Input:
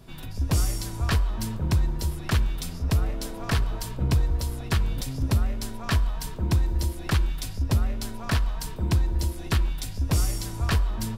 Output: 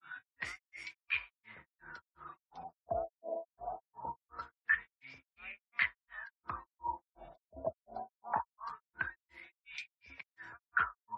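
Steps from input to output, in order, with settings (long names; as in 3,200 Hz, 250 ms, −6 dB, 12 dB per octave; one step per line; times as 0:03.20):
LFO wah 0.23 Hz 640–2,400 Hz, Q 18
gate on every frequency bin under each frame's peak −30 dB strong
granular cloud 240 ms, grains 2.8 per second, pitch spread up and down by 0 semitones
level +16.5 dB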